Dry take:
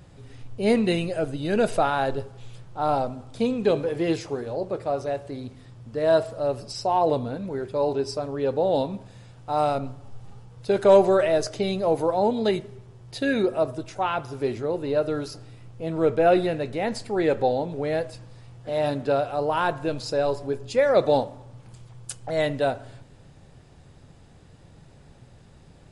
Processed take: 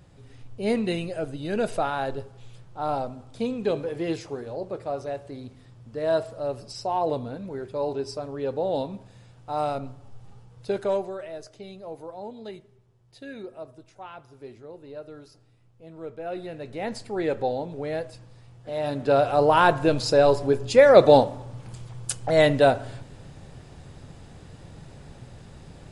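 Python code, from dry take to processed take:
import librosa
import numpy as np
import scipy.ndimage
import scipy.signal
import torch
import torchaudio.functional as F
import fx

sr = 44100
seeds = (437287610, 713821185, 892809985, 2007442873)

y = fx.gain(x, sr, db=fx.line((10.69, -4.0), (11.14, -16.0), (16.25, -16.0), (16.85, -4.0), (18.84, -4.0), (19.28, 6.0)))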